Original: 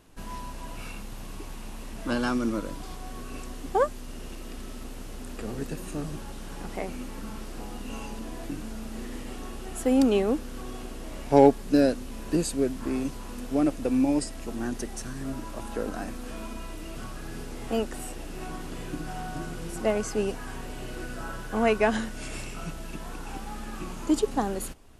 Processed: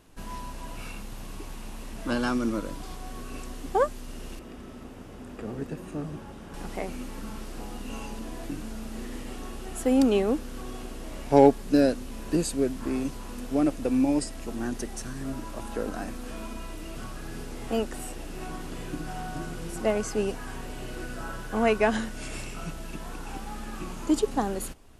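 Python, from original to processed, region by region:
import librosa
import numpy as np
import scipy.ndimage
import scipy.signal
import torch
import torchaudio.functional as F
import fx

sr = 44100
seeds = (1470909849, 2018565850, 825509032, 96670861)

y = fx.chain(x, sr, fx.highpass(hz=59.0, slope=12),
    fx.high_shelf(hz=3100.0, db=-12.0),
    fx.notch(hz=4200.0, q=18.0), at=(4.39, 6.54))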